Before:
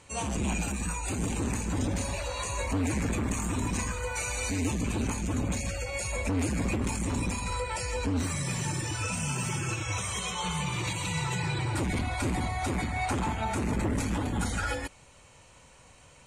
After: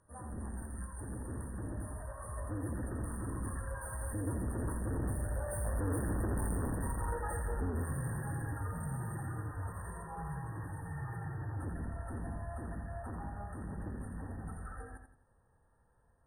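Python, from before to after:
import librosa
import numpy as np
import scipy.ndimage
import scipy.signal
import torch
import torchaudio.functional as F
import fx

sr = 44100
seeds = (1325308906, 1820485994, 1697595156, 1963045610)

y = fx.rattle_buzz(x, sr, strikes_db=-38.0, level_db=-24.0)
y = fx.doppler_pass(y, sr, speed_mps=29, closest_m=29.0, pass_at_s=6.32)
y = fx.low_shelf(y, sr, hz=120.0, db=7.0)
y = 10.0 ** (-34.0 / 20.0) * np.tanh(y / 10.0 ** (-34.0 / 20.0))
y = fx.brickwall_bandstop(y, sr, low_hz=1900.0, high_hz=8600.0)
y = fx.peak_eq(y, sr, hz=5700.0, db=13.0, octaves=0.52)
y = fx.echo_feedback(y, sr, ms=85, feedback_pct=35, wet_db=-7.0)
y = y * 10.0 ** (1.5 / 20.0)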